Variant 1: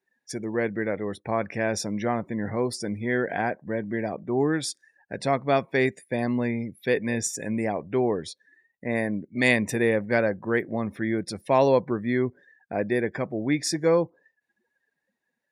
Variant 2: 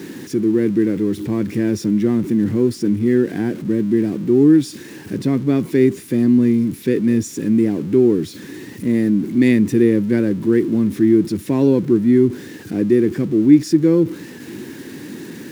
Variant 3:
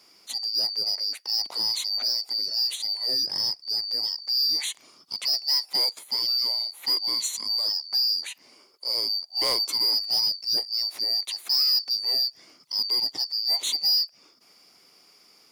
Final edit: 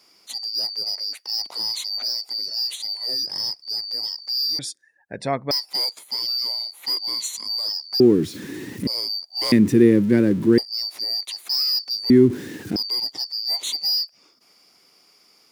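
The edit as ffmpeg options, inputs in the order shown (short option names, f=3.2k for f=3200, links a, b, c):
-filter_complex "[1:a]asplit=3[a][b][c];[2:a]asplit=5[d][e][f][g][h];[d]atrim=end=4.592[i];[0:a]atrim=start=4.588:end=5.512[j];[e]atrim=start=5.508:end=8.002[k];[a]atrim=start=7.998:end=8.872[l];[f]atrim=start=8.868:end=9.522[m];[b]atrim=start=9.518:end=10.582[n];[g]atrim=start=10.578:end=12.102[o];[c]atrim=start=12.098:end=12.762[p];[h]atrim=start=12.758[q];[i][j]acrossfade=d=0.004:c1=hsin:c2=hsin[r];[r][k]acrossfade=d=0.004:c1=hsin:c2=hsin[s];[s][l]acrossfade=d=0.004:c1=hsin:c2=hsin[t];[t][m]acrossfade=d=0.004:c1=hsin:c2=hsin[u];[u][n]acrossfade=d=0.004:c1=hsin:c2=hsin[v];[v][o]acrossfade=d=0.004:c1=hsin:c2=hsin[w];[w][p]acrossfade=d=0.004:c1=hsin:c2=hsin[x];[x][q]acrossfade=d=0.004:c1=hsin:c2=hsin"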